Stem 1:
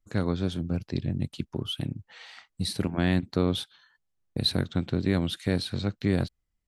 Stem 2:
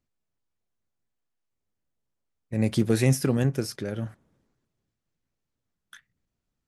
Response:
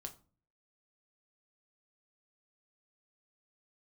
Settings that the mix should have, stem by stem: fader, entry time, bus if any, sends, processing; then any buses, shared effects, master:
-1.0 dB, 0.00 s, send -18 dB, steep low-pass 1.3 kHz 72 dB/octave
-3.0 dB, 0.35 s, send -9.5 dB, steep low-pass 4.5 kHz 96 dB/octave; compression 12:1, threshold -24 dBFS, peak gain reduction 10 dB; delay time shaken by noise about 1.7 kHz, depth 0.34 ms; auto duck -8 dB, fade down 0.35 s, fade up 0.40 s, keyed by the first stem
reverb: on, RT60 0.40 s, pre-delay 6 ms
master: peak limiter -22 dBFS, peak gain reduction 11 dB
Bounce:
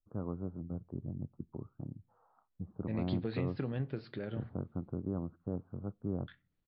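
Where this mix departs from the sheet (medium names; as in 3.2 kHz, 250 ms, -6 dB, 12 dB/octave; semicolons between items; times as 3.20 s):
stem 1 -1.0 dB -> -12.0 dB; stem 2: missing delay time shaken by noise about 1.7 kHz, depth 0.34 ms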